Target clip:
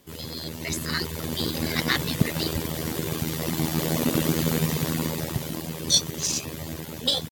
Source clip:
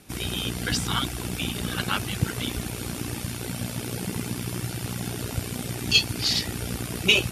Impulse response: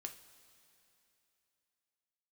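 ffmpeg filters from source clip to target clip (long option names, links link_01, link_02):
-af "dynaudnorm=framelen=440:gausssize=5:maxgain=15dB,asetrate=58866,aresample=44100,atempo=0.749154,aeval=exprs='0.944*(cos(1*acos(clip(val(0)/0.944,-1,1)))-cos(1*PI/2))+0.0188*(cos(7*acos(clip(val(0)/0.944,-1,1)))-cos(7*PI/2))':channel_layout=same,volume=-4.5dB"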